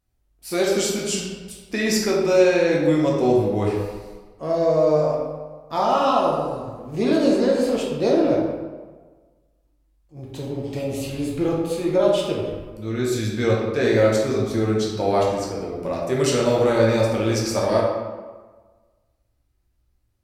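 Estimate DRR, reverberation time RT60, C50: -4.0 dB, 1.4 s, 0.5 dB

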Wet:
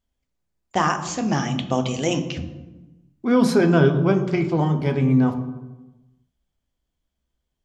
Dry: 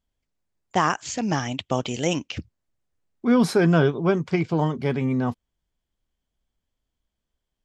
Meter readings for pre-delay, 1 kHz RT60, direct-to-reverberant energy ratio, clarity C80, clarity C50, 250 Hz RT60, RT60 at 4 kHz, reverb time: 3 ms, 1.0 s, 6.5 dB, 12.5 dB, 10.5 dB, 1.4 s, 0.70 s, 1.1 s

